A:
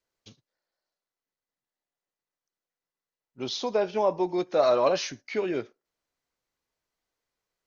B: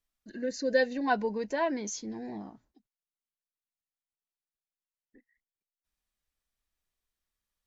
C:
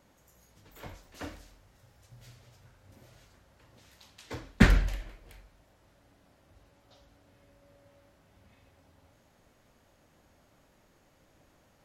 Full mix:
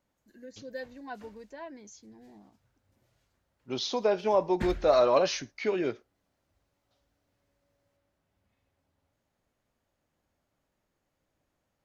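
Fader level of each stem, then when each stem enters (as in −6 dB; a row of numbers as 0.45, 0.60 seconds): −0.5, −14.0, −15.0 decibels; 0.30, 0.00, 0.00 seconds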